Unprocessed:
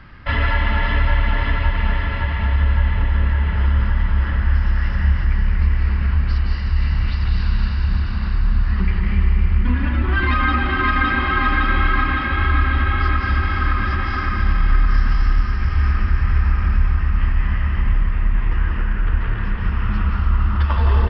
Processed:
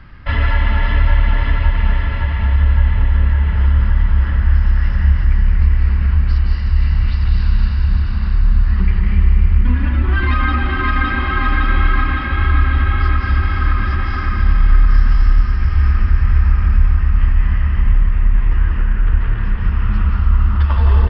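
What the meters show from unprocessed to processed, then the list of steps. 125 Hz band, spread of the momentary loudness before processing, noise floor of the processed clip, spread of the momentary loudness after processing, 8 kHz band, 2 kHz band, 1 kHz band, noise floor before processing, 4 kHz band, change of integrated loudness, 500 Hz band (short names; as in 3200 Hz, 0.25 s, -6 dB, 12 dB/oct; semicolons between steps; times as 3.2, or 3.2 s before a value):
+4.0 dB, 4 LU, -18 dBFS, 4 LU, n/a, -1.0 dB, -1.0 dB, -22 dBFS, -1.0 dB, +3.5 dB, -0.5 dB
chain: low shelf 120 Hz +6.5 dB; gain -1 dB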